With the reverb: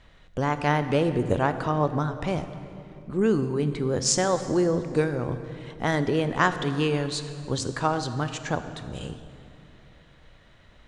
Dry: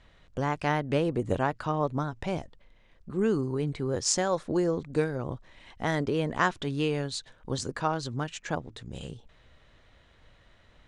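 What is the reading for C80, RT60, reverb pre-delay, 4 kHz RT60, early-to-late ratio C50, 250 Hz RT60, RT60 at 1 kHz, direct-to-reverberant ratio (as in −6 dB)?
11.5 dB, 2.8 s, 23 ms, 2.0 s, 10.5 dB, 3.5 s, 2.5 s, 10.0 dB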